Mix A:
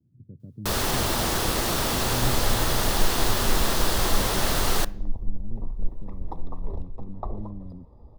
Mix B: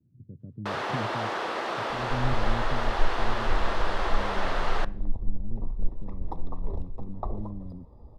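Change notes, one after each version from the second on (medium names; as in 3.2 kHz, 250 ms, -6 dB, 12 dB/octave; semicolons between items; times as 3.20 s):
first sound: add band-pass 480–2100 Hz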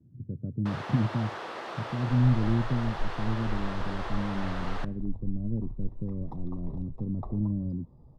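speech +8.5 dB; first sound -7.5 dB; second sound -8.5 dB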